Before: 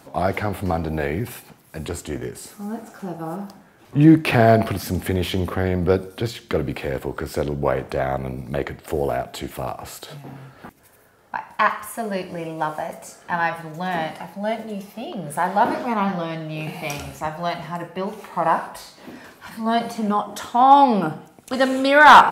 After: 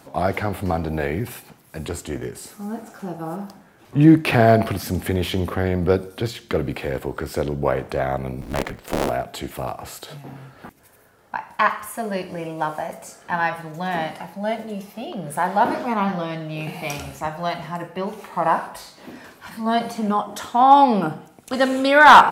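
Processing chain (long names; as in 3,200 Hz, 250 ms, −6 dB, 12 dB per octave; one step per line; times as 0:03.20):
0:08.41–0:09.10: sub-harmonics by changed cycles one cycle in 3, inverted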